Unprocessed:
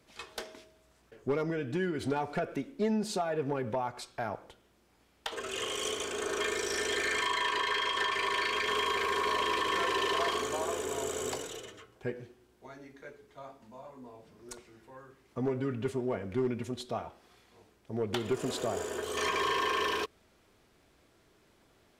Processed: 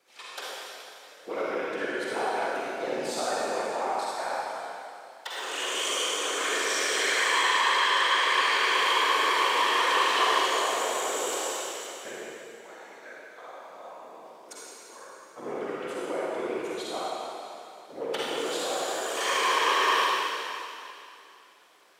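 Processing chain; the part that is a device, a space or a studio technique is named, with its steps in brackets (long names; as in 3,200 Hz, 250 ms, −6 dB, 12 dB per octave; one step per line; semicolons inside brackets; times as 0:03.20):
whispering ghost (random phases in short frames; high-pass filter 580 Hz 12 dB per octave; convolution reverb RT60 2.6 s, pre-delay 40 ms, DRR −7 dB)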